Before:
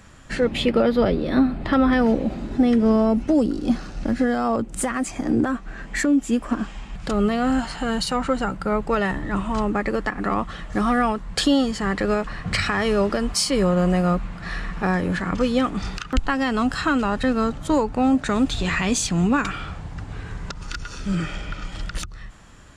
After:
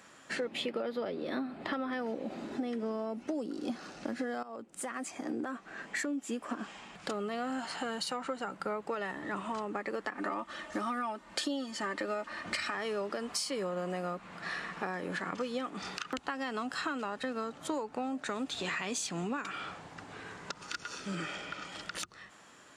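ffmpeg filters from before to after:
-filter_complex "[0:a]asettb=1/sr,asplit=3[a][b][c];[a]atrim=end=10.144[d];[b]atrim=start=10.14:end=12.75,asetpts=PTS-STARTPTS,afade=t=in:d=0.004:c=qsin,afade=t=out:st=2.606:d=0.004:c=qsin,aecho=1:1:3.3:0.71,atrim=end_sample=115101[e];[c]atrim=start=12.746[f];[d][e]acrossfade=d=0.004:c1=hsin:c2=qsin[g];[g][f]acrossfade=d=0.004:c1=qsin:c2=hsin,asplit=2[h][i];[h]atrim=end=4.43,asetpts=PTS-STARTPTS,afade=t=out:st=4.426:d=0.004:c=hsin:silence=0.141254[j];[i]atrim=start=4.43,asetpts=PTS-STARTPTS,afade=t=in:d=1.41:silence=0.141254[k];[j][k]concat=n=2:v=0:a=1,highpass=310,acompressor=threshold=-28dB:ratio=6,volume=-4.5dB"

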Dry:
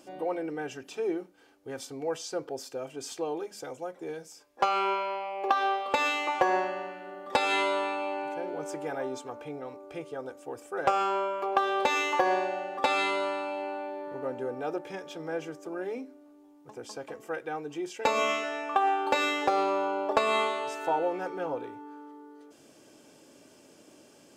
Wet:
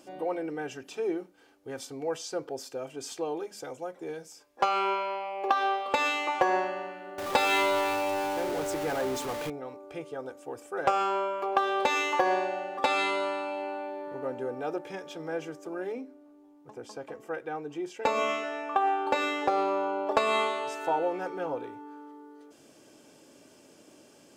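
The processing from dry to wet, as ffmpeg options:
-filter_complex "[0:a]asettb=1/sr,asplit=3[a][b][c];[a]atrim=end=7.184[d];[b]atrim=start=7.18:end=9.5,asetpts=PTS-STARTPTS,afade=t=in:d=0.004:c=qsin,afade=t=out:st=2.316:d=0.004:c=qsin,aeval=exprs='val(0)+0.5*0.0266*sgn(val(0))':c=same[e];[c]atrim=start=9.496[f];[d][e]acrossfade=d=0.004:c1=hsin:c2=qsin[g];[g][f]acrossfade=d=0.004:c1=qsin:c2=hsin,asettb=1/sr,asplit=3[h][i][j];[h]atrim=end=15.924[k];[i]atrim=start=15.92:end=20.07,asetpts=PTS-STARTPTS,afade=t=in:d=0.004:c=qsin,afade=t=out:st=4.146:d=0.004:c=qsin,highshelf=f=2.5k:g=-6[l];[j]atrim=start=20.066[m];[k][l]acrossfade=d=0.004:c1=hsin:c2=qsin[n];[n][m]acrossfade=d=0.004:c1=qsin:c2=hsin"

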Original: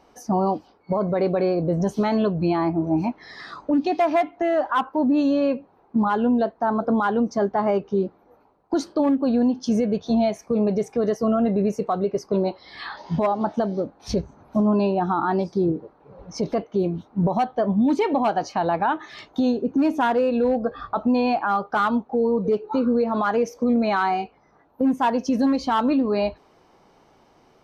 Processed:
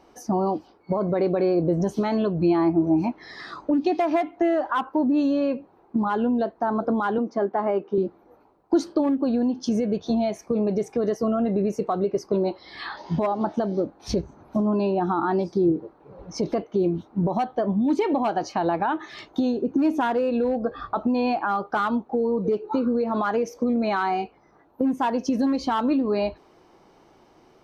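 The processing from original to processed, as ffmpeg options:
-filter_complex "[0:a]asettb=1/sr,asplit=3[a][b][c];[a]atrim=end=7.184[d];[b]atrim=start=7.18:end=7.98,asetpts=PTS-STARTPTS,afade=t=in:d=0.004:c=qsin,afade=t=out:st=0.796:d=0.004:c=qsin,highpass=230,lowpass=2.8k[e];[c]atrim=start=7.976[f];[d][e]acrossfade=d=0.004:c1=hsin:c2=qsin[g];[g][f]acrossfade=d=0.004:c1=qsin:c2=hsin,acompressor=threshold=-20dB:ratio=6,equalizer=f=340:t=o:w=0.31:g=6.5"

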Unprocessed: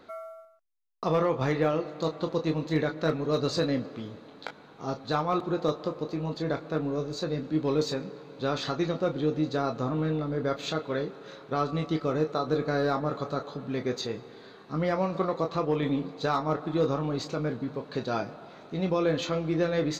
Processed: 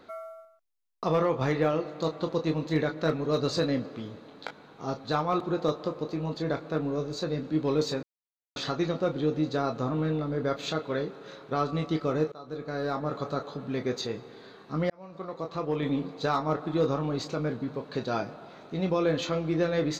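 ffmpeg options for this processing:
-filter_complex "[0:a]asplit=5[a][b][c][d][e];[a]atrim=end=8.03,asetpts=PTS-STARTPTS,afade=t=out:st=8.026:d=0.004:c=hsin[f];[b]atrim=start=8.03:end=8.56,asetpts=PTS-STARTPTS,volume=0[g];[c]atrim=start=8.56:end=12.32,asetpts=PTS-STARTPTS,afade=t=in:d=0.004:c=hsin,afade=t=out:st=3.756:d=0.004:c=hsin:silence=0.0944061[h];[d]atrim=start=12.32:end=14.9,asetpts=PTS-STARTPTS,afade=t=in:d=0.93:silence=0.0944061,afade=t=out:st=2.576:d=0.004:c=hsin[i];[e]atrim=start=14.9,asetpts=PTS-STARTPTS,afade=t=in:d=1.09[j];[f][g][h][i][j]concat=n=5:v=0:a=1"

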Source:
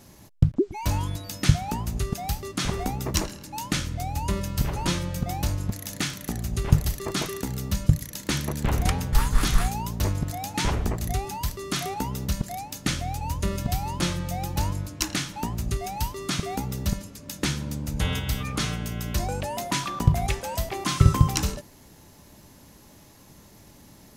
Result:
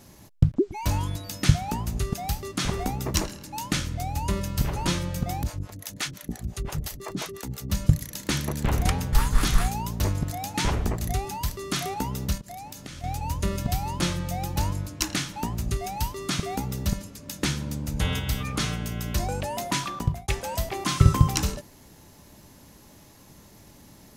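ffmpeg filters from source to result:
-filter_complex "[0:a]asettb=1/sr,asplit=3[a][b][c];[a]atrim=end=5.434[d];[b]atrim=start=5.43:end=7.7,asetpts=PTS-STARTPTS,afade=t=in:d=0.004:c=qsin,afade=t=out:st=2.266:d=0.004:c=qsin,acrossover=split=450[e][f];[e]aeval=exprs='val(0)*(1-1/2+1/2*cos(2*PI*5.8*n/s))':c=same[g];[f]aeval=exprs='val(0)*(1-1/2-1/2*cos(2*PI*5.8*n/s))':c=same[h];[g][h]amix=inputs=2:normalize=0[i];[c]atrim=start=7.696[j];[d][i]acrossfade=d=0.004:c1=hsin:c2=qsin[k];[k][j]acrossfade=d=0.004:c1=qsin:c2=hsin,asettb=1/sr,asplit=3[l][m][n];[l]atrim=end=12.374[o];[m]atrim=start=12.37:end=13.04,asetpts=PTS-STARTPTS,afade=t=in:d=0.004:c=qsin,afade=t=out:st=0.666:d=0.004:c=qsin,acompressor=threshold=-35dB:ratio=16:attack=3.2:release=140:knee=1:detection=peak[p];[n]atrim=start=13.036[q];[o][p]acrossfade=d=0.004:c1=hsin:c2=qsin[r];[r][q]acrossfade=d=0.004:c1=qsin:c2=hsin,asplit=2[s][t];[s]atrim=end=20.28,asetpts=PTS-STARTPTS,afade=t=out:st=19.68:d=0.6:c=qsin[u];[t]atrim=start=20.28,asetpts=PTS-STARTPTS,afade=t=in:d=0.004:c=hsin[v];[u][v]concat=n=2:v=0:a=1"

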